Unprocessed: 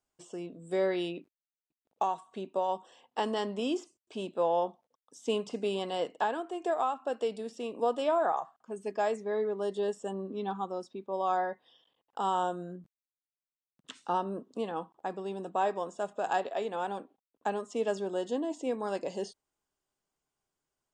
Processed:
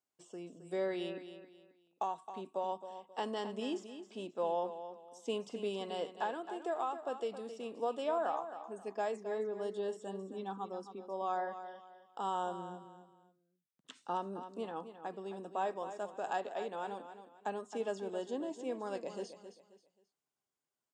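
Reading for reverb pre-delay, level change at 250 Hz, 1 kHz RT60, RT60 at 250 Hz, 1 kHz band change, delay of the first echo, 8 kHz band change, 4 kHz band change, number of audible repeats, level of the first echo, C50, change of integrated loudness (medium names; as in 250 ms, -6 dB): no reverb, -6.5 dB, no reverb, no reverb, -6.0 dB, 267 ms, -6.0 dB, -6.0 dB, 3, -11.0 dB, no reverb, -6.5 dB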